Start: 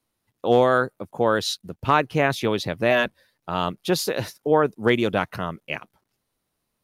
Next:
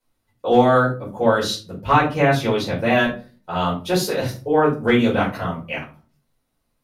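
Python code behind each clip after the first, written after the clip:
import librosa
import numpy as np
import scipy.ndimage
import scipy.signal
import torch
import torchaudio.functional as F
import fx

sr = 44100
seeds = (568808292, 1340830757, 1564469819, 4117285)

y = fx.room_shoebox(x, sr, seeds[0], volume_m3=180.0, walls='furnished', distance_m=4.8)
y = y * 10.0 ** (-7.5 / 20.0)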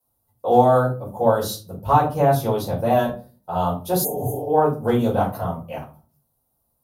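y = scipy.signal.sosfilt(scipy.signal.butter(2, 49.0, 'highpass', fs=sr, output='sos'), x)
y = fx.spec_repair(y, sr, seeds[1], start_s=4.07, length_s=0.36, low_hz=260.0, high_hz=6100.0, source='after')
y = fx.curve_eq(y, sr, hz=(100.0, 300.0, 810.0, 2200.0, 3200.0, 7300.0, 13000.0), db=(0, -8, 1, -21, -13, -4, 10))
y = y * 10.0 ** (2.5 / 20.0)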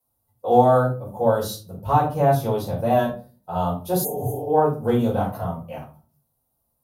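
y = fx.hpss(x, sr, part='percussive', gain_db=-6)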